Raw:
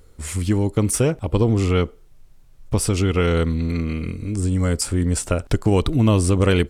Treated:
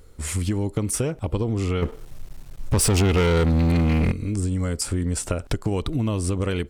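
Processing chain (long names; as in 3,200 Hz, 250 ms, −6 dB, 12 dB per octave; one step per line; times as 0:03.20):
downward compressor 6 to 1, threshold −22 dBFS, peak gain reduction 10 dB
0:01.82–0:04.12: leveller curve on the samples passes 3
level +1 dB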